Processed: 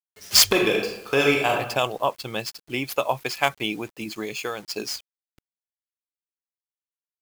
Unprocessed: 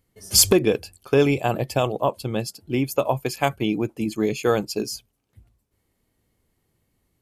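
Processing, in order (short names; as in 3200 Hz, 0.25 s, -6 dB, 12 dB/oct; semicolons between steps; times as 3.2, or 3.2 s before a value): median filter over 5 samples; tilt shelf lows -8.5 dB, about 650 Hz; 0.46–1.53 reverb throw, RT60 0.84 s, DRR 0 dB; 3.78–4.75 compressor 5:1, threshold -25 dBFS, peak gain reduction 9.5 dB; bit-crush 8-bit; gain -2 dB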